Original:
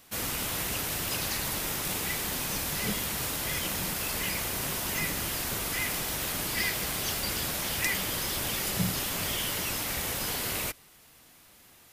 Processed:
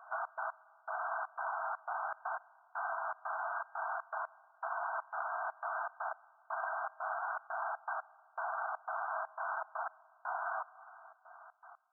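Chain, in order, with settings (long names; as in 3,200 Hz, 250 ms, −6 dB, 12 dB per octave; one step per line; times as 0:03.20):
brick-wall band-pass 630–1,600 Hz
downward compressor 3 to 1, threshold −48 dBFS, peak gain reduction 8 dB
gate pattern "xx.x...xxx.xxx." 120 BPM −60 dB
convolution reverb RT60 2.5 s, pre-delay 29 ms, DRR 20.5 dB
level +11.5 dB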